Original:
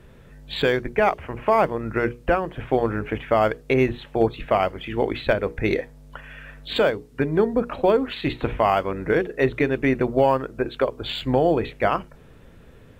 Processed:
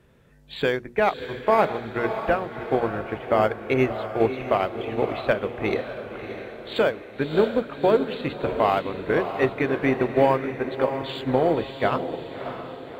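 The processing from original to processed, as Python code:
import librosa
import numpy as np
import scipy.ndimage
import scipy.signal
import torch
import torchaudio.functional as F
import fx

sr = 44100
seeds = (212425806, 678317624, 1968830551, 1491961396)

y = fx.highpass(x, sr, hz=86.0, slope=6)
y = fx.echo_diffused(y, sr, ms=625, feedback_pct=58, wet_db=-6.0)
y = fx.upward_expand(y, sr, threshold_db=-28.0, expansion=1.5)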